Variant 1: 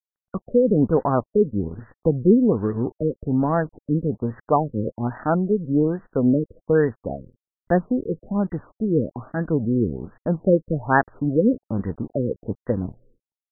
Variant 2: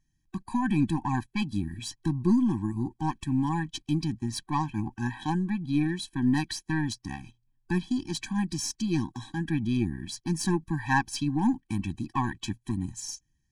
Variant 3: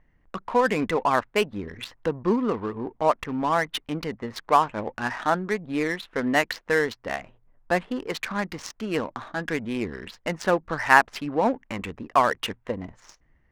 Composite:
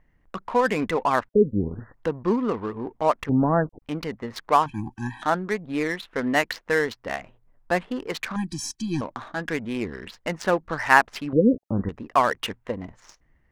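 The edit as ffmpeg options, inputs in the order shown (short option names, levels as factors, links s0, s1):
-filter_complex "[0:a]asplit=3[s0][s1][s2];[1:a]asplit=2[s3][s4];[2:a]asplit=6[s5][s6][s7][s8][s9][s10];[s5]atrim=end=1.292[s11];[s0]atrim=start=1.288:end=1.942[s12];[s6]atrim=start=1.938:end=3.292[s13];[s1]atrim=start=3.288:end=3.822[s14];[s7]atrim=start=3.818:end=4.662[s15];[s3]atrim=start=4.658:end=5.222[s16];[s8]atrim=start=5.218:end=8.362[s17];[s4]atrim=start=8.358:end=9.012[s18];[s9]atrim=start=9.008:end=11.332[s19];[s2]atrim=start=11.328:end=11.892[s20];[s10]atrim=start=11.888[s21];[s11][s12]acrossfade=d=0.004:c1=hsin:c2=hsin[s22];[s22][s13]acrossfade=d=0.004:c1=hsin:c2=hsin[s23];[s23][s14]acrossfade=d=0.004:c1=hsin:c2=hsin[s24];[s24][s15]acrossfade=d=0.004:c1=hsin:c2=hsin[s25];[s25][s16]acrossfade=d=0.004:c1=hsin:c2=hsin[s26];[s26][s17]acrossfade=d=0.004:c1=hsin:c2=hsin[s27];[s27][s18]acrossfade=d=0.004:c1=hsin:c2=hsin[s28];[s28][s19]acrossfade=d=0.004:c1=hsin:c2=hsin[s29];[s29][s20]acrossfade=d=0.004:c1=hsin:c2=hsin[s30];[s30][s21]acrossfade=d=0.004:c1=hsin:c2=hsin"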